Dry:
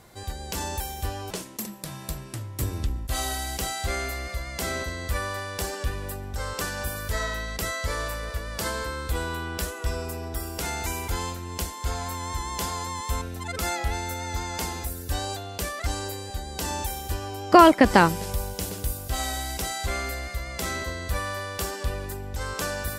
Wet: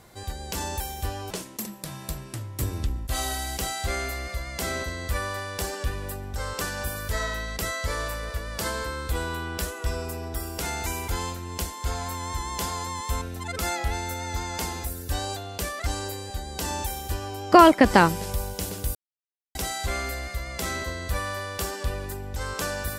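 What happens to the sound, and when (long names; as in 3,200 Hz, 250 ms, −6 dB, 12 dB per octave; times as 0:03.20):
0:18.95–0:19.55: silence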